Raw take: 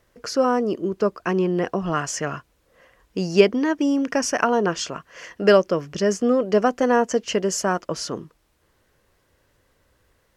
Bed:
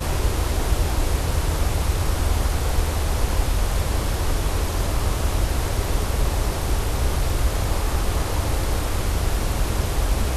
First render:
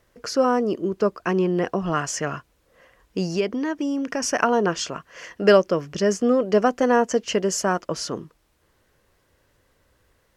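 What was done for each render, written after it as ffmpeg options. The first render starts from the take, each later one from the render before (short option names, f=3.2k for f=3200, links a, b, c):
-filter_complex "[0:a]asettb=1/sr,asplit=3[a][b][c];[a]atrim=end=3.324[d];[b]atrim=start=3.32:end=4.22,asetpts=PTS-STARTPTS,afade=t=in:d=0.004:c=qsin,afade=t=out:st=0.896:d=0.004:c=qsin,acompressor=threshold=-25dB:ratio=2:attack=3.2:release=140:knee=1:detection=peak[e];[c]atrim=start=4.216[f];[d][e]acrossfade=d=0.004:c1=hsin:c2=qsin[g];[g][f]acrossfade=d=0.004:c1=qsin:c2=hsin"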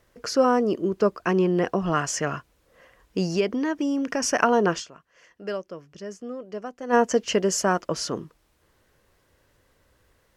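-filter_complex "[0:a]asplit=3[a][b][c];[a]atrim=end=5.06,asetpts=PTS-STARTPTS,afade=t=out:st=4.78:d=0.28:c=exp:silence=0.158489[d];[b]atrim=start=5.06:end=6.66,asetpts=PTS-STARTPTS,volume=-16dB[e];[c]atrim=start=6.66,asetpts=PTS-STARTPTS,afade=t=in:d=0.28:c=exp:silence=0.158489[f];[d][e][f]concat=n=3:v=0:a=1"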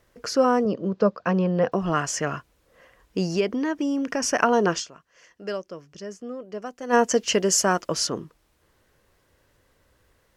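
-filter_complex "[0:a]asettb=1/sr,asplit=3[a][b][c];[a]atrim=end=0.654[d];[b]atrim=start=0.65:end=1.72,asetpts=PTS-STARTPTS,afade=t=in:d=0.004:c=qsin,afade=t=out:st=1.066:d=0.004:c=qsin,highpass=120,equalizer=f=130:t=q:w=4:g=7,equalizer=f=200:t=q:w=4:g=4,equalizer=f=360:t=q:w=4:g=-10,equalizer=f=520:t=q:w=4:g=8,equalizer=f=2.1k:t=q:w=4:g=-5,equalizer=f=3k:t=q:w=4:g=-4,lowpass=f=5.1k:w=0.5412,lowpass=f=5.1k:w=1.3066[e];[c]atrim=start=1.716[f];[d][e]acrossfade=d=0.004:c1=hsin:c2=qsin[g];[g][f]acrossfade=d=0.004:c1=qsin:c2=hsin,asettb=1/sr,asplit=3[h][i][j];[h]atrim=end=4.534[k];[i]atrim=start=4.53:end=6.06,asetpts=PTS-STARTPTS,afade=t=in:d=0.004:c=qsin,afade=t=out:st=1.526:d=0.004:c=qsin,equalizer=f=5.9k:t=o:w=1.2:g=5[l];[j]atrim=start=6.056[m];[k][l]acrossfade=d=0.004:c1=hsin:c2=qsin[n];[n][m]acrossfade=d=0.004:c1=qsin:c2=hsin,asettb=1/sr,asplit=3[o][p][q];[o]atrim=end=6.624[r];[p]atrim=start=6.62:end=8.07,asetpts=PTS-STARTPTS,afade=t=in:d=0.004:c=qsin,afade=t=out:st=1.446:d=0.004:c=qsin,highshelf=f=2.9k:g=7[s];[q]atrim=start=8.066[t];[r][s]acrossfade=d=0.004:c1=hsin:c2=qsin[u];[u][t]acrossfade=d=0.004:c1=qsin:c2=hsin"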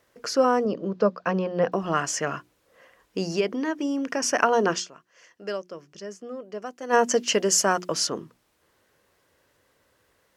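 -af "highpass=f=200:p=1,bandreject=f=60:t=h:w=6,bandreject=f=120:t=h:w=6,bandreject=f=180:t=h:w=6,bandreject=f=240:t=h:w=6,bandreject=f=300:t=h:w=6,bandreject=f=360:t=h:w=6"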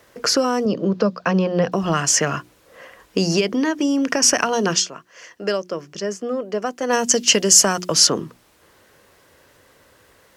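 -filter_complex "[0:a]acrossover=split=170|3000[a][b][c];[b]acompressor=threshold=-31dB:ratio=6[d];[a][d][c]amix=inputs=3:normalize=0,alimiter=level_in=12.5dB:limit=-1dB:release=50:level=0:latency=1"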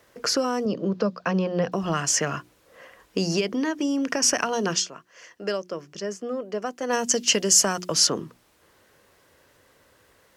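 -af "volume=-5.5dB"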